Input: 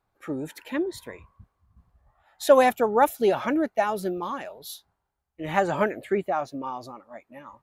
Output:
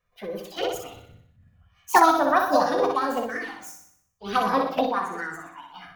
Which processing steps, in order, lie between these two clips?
simulated room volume 260 m³, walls furnished, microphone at 1.1 m; touch-sensitive flanger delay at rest 2.2 ms, full sweep at -20 dBFS; tape speed +28%; flutter echo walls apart 10.5 m, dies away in 0.66 s; formant shift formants +4 st

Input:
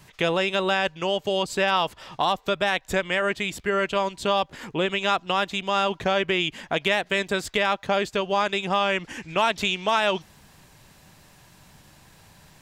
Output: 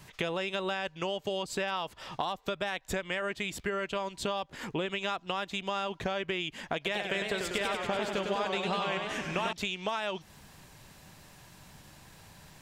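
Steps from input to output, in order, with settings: compression, threshold -29 dBFS, peak gain reduction 11.5 dB; 6.75–9.53 s: modulated delay 98 ms, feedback 73%, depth 156 cents, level -5 dB; trim -1 dB

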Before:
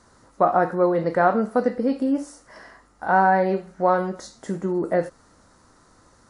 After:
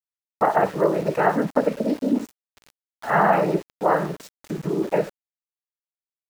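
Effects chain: noise-vocoded speech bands 12; small samples zeroed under -36.5 dBFS

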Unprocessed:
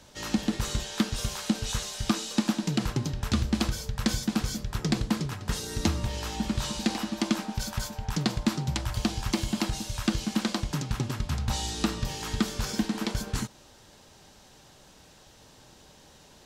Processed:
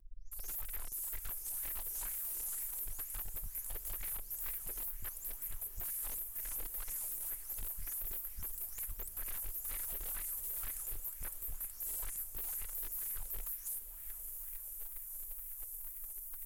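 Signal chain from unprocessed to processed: delay that grows with frequency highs late, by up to 322 ms; inverse Chebyshev band-stop 100–3500 Hz, stop band 70 dB; treble shelf 8.1 kHz +12 dB; transient shaper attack +6 dB, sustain -10 dB; peak limiter -47 dBFS, peak gain reduction 23.5 dB; sine folder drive 5 dB, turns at -47 dBFS; wow and flutter 120 cents; on a send: echo that smears into a reverb 743 ms, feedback 62%, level -11 dB; on the sum: sweeping bell 2.1 Hz 370–2200 Hz +8 dB; trim +10.5 dB

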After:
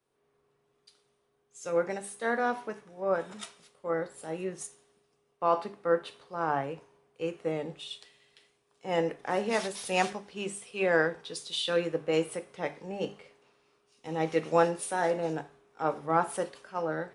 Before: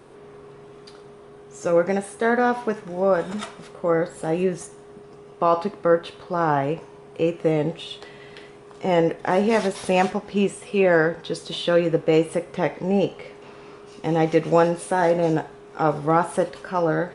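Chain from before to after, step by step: tilt EQ +1.5 dB/octave; hum notches 50/100/150/200/250/300/350/400 Hz; three bands expanded up and down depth 70%; trim -8.5 dB

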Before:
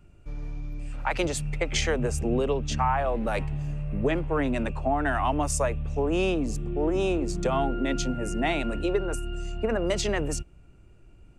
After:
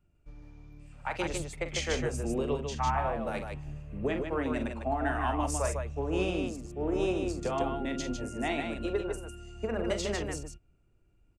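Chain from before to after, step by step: loudspeakers at several distances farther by 15 m -8 dB, 52 m -4 dB; upward expansion 1.5:1, over -42 dBFS; trim -5 dB

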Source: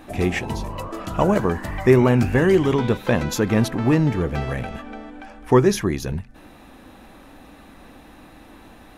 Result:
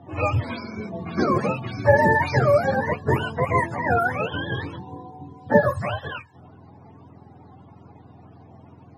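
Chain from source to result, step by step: spectrum inverted on a logarithmic axis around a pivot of 470 Hz; level-controlled noise filter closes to 1.5 kHz, open at -15 dBFS

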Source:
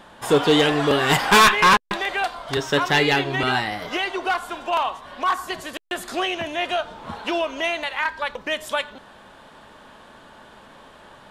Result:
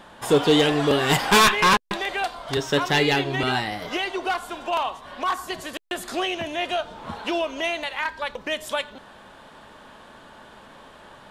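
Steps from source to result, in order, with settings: dynamic bell 1.4 kHz, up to -4 dB, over -34 dBFS, Q 0.76

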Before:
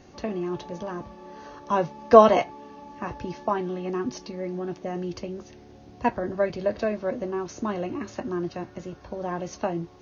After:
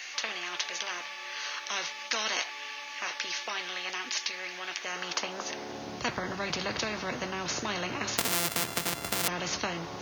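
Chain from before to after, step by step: 8.18–9.28 s: sorted samples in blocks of 64 samples; high-pass sweep 2.2 kHz -> 150 Hz, 4.74–6.12 s; spectrum-flattening compressor 4:1; trim +3 dB

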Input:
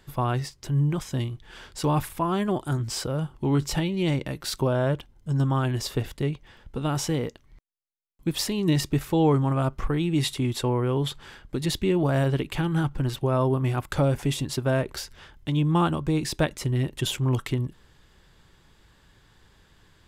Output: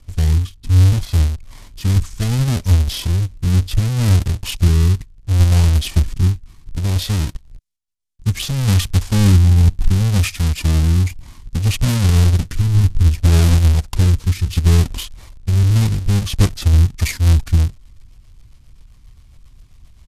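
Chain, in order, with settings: square wave that keeps the level; tone controls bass +15 dB, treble +10 dB; rotary cabinet horn 0.65 Hz, later 7.5 Hz, at 16.62 s; pitch shift -7.5 st; trim -3 dB

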